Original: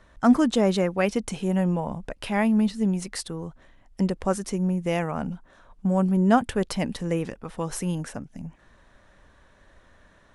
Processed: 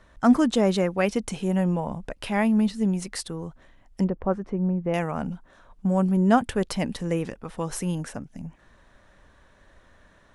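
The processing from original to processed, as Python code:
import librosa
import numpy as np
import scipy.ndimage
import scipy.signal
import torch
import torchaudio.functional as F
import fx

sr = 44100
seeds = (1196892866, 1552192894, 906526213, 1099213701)

y = fx.lowpass(x, sr, hz=1300.0, slope=12, at=(4.04, 4.94))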